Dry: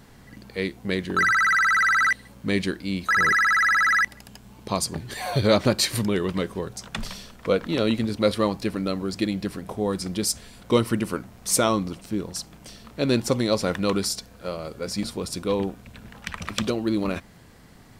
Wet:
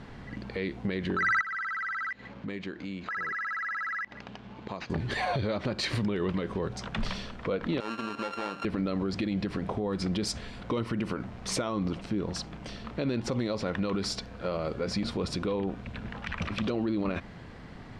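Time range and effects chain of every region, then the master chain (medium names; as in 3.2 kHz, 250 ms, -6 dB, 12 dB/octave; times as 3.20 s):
1.41–4.90 s: high-pass 180 Hz 6 dB/octave + compression 4:1, threshold -40 dBFS + decimation joined by straight lines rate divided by 4×
7.80–8.65 s: sorted samples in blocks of 32 samples + high-pass 320 Hz + compression 5:1, threshold -33 dBFS
whole clip: low-pass 3.3 kHz 12 dB/octave; compression, threshold -25 dBFS; peak limiter -26 dBFS; trim +5 dB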